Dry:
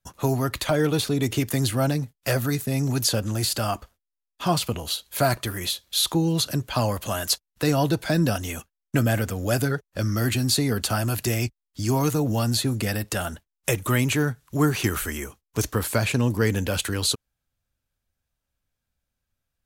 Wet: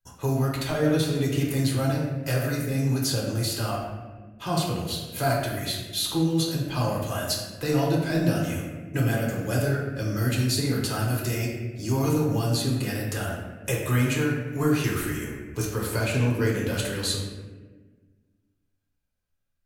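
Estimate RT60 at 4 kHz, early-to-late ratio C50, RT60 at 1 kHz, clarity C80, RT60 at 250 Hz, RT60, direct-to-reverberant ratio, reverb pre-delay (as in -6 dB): 0.85 s, 2.0 dB, 1.1 s, 4.0 dB, 2.1 s, 1.4 s, -3.5 dB, 3 ms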